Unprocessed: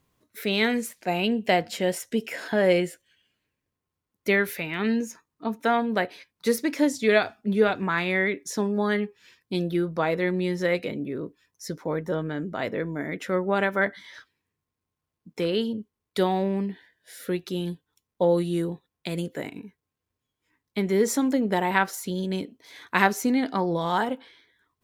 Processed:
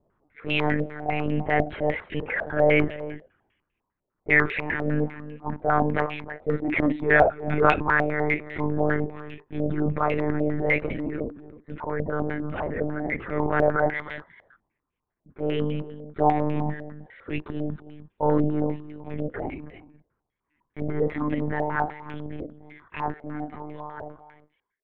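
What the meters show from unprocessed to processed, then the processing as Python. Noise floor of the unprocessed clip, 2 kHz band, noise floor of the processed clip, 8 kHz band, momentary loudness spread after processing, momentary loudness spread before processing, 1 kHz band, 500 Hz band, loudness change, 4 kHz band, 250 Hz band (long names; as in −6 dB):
−85 dBFS, +1.5 dB, −82 dBFS, below −30 dB, 17 LU, 12 LU, +2.0 dB, −0.5 dB, +0.5 dB, −8.0 dB, −1.5 dB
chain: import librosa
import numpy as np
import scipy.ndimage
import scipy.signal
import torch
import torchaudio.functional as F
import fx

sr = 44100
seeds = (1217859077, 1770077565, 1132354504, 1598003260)

y = fx.fade_out_tail(x, sr, length_s=5.52)
y = fx.highpass(y, sr, hz=100.0, slope=6)
y = fx.tilt_eq(y, sr, slope=-1.5)
y = fx.transient(y, sr, attack_db=-8, sustain_db=9)
y = y + 10.0 ** (-14.0 / 20.0) * np.pad(y, (int(313 * sr / 1000.0), 0))[:len(y)]
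y = fx.lpc_monotone(y, sr, seeds[0], pitch_hz=150.0, order=16)
y = fx.filter_held_lowpass(y, sr, hz=10.0, low_hz=650.0, high_hz=2600.0)
y = y * librosa.db_to_amplitude(-2.0)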